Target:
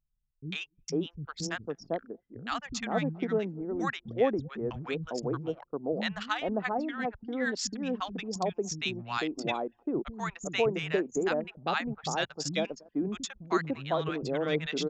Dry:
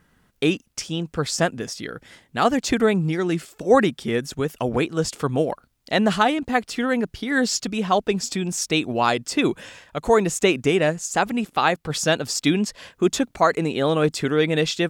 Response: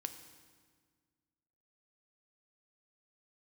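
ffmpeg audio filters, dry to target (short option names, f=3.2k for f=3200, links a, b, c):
-filter_complex "[0:a]aresample=16000,aresample=44100,asplit=2[a][b];[b]aecho=0:1:234|468:0.075|0.0225[c];[a][c]amix=inputs=2:normalize=0,anlmdn=251,acrossover=split=200|930[d][e][f];[f]adelay=100[g];[e]adelay=500[h];[d][h][g]amix=inputs=3:normalize=0,volume=-8.5dB"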